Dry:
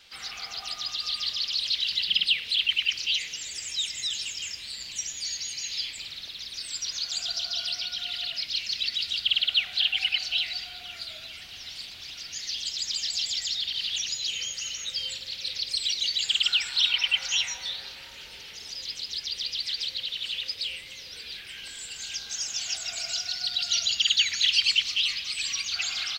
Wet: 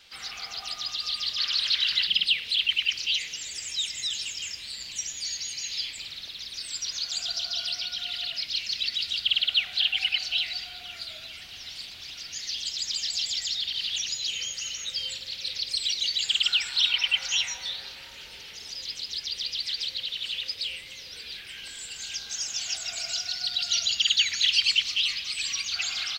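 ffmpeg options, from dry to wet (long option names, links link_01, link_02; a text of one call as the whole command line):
ffmpeg -i in.wav -filter_complex "[0:a]asettb=1/sr,asplit=3[link_01][link_02][link_03];[link_01]atrim=end=1.384[link_04];[link_02]atrim=start=1.38:end=2.07,asetpts=PTS-STARTPTS,afade=type=in:duration=0.004:curve=qsin,afade=type=out:start_time=0.686:duration=0.004:curve=qsin,equalizer=frequency=1500:width_type=o:width=1.2:gain=13.5[link_05];[link_03]atrim=start=2.066[link_06];[link_04][link_05]acrossfade=duration=0.004:curve1=hsin:curve2=qsin[link_07];[link_07][link_06]acrossfade=duration=0.004:curve1=qsin:curve2=hsin" out.wav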